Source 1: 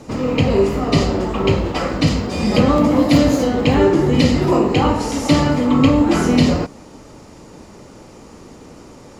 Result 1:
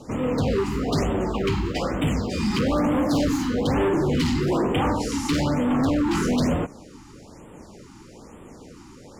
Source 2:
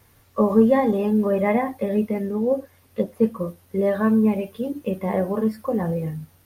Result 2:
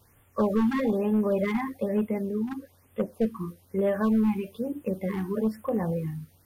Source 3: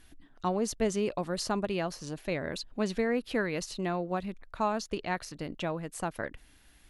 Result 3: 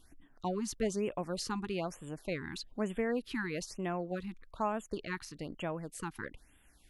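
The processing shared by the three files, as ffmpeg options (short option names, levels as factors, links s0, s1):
-af "asoftclip=type=hard:threshold=0.188,afftfilt=real='re*(1-between(b*sr/1024,520*pow(5200/520,0.5+0.5*sin(2*PI*1.1*pts/sr))/1.41,520*pow(5200/520,0.5+0.5*sin(2*PI*1.1*pts/sr))*1.41))':imag='im*(1-between(b*sr/1024,520*pow(5200/520,0.5+0.5*sin(2*PI*1.1*pts/sr))/1.41,520*pow(5200/520,0.5+0.5*sin(2*PI*1.1*pts/sr))*1.41))':win_size=1024:overlap=0.75,volume=0.631"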